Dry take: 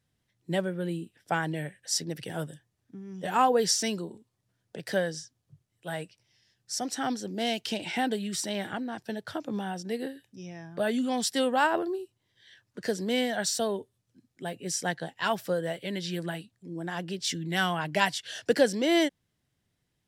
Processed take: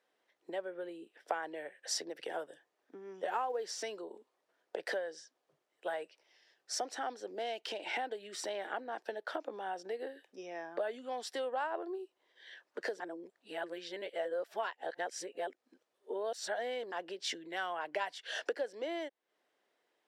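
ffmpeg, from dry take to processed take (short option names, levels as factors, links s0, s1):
-filter_complex "[0:a]asettb=1/sr,asplit=3[s0][s1][s2];[s0]atrim=end=3.294[s3];[s1]atrim=start=3.29:end=3.82,asetpts=PTS-STARTPTS,afade=t=in:d=0.004:c=qsin,afade=t=out:st=0.526:d=0.004:c=qsin,acrusher=bits=7:mode=log:mix=0:aa=0.000001[s4];[s2]atrim=start=3.816[s5];[s3][s4]acrossfade=d=0.004:c1=hsin:c2=qsin[s6];[s6][s5]acrossfade=d=0.004:c1=qsin:c2=hsin,asplit=3[s7][s8][s9];[s7]atrim=end=13.002[s10];[s8]atrim=start=12.998:end=16.922,asetpts=PTS-STARTPTS,areverse[s11];[s9]atrim=start=16.918[s12];[s10][s11]acrossfade=d=0.004:c1=hsin:c2=hsin[s13];[s13][s12]acrossfade=d=0.004:c1=hsin:c2=hsin,lowpass=f=1200:p=1,acompressor=threshold=0.00891:ratio=12,highpass=f=420:w=0.5412,highpass=f=420:w=1.3066,volume=2.99"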